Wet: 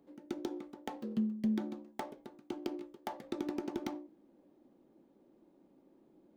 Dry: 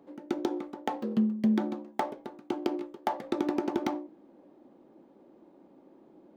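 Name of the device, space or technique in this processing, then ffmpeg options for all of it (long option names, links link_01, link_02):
smiley-face EQ: -af "lowshelf=frequency=84:gain=8.5,equalizer=frequency=870:width_type=o:width=1.9:gain=-4.5,highshelf=frequency=5400:gain=5.5,volume=-7.5dB"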